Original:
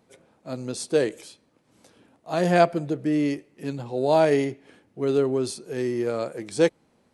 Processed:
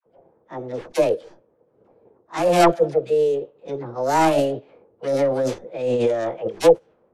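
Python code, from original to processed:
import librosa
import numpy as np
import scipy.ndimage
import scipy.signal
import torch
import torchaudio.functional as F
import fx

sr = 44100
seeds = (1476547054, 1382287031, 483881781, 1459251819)

y = fx.tracing_dist(x, sr, depth_ms=0.35)
y = scipy.signal.sosfilt(scipy.signal.butter(4, 8800.0, 'lowpass', fs=sr, output='sos'), y)
y = fx.env_lowpass(y, sr, base_hz=540.0, full_db=-18.5)
y = fx.peak_eq(y, sr, hz=340.0, db=14.5, octaves=0.23)
y = fx.dispersion(y, sr, late='lows', ms=63.0, hz=780.0)
y = fx.formant_shift(y, sr, semitones=6)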